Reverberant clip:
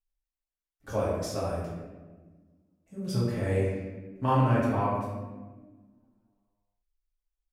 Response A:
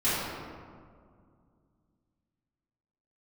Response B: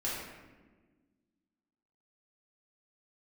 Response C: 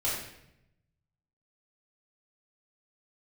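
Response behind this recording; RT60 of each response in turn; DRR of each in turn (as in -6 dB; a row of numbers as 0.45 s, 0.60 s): B; 2.1 s, 1.4 s, 0.80 s; -14.0 dB, -8.0 dB, -8.0 dB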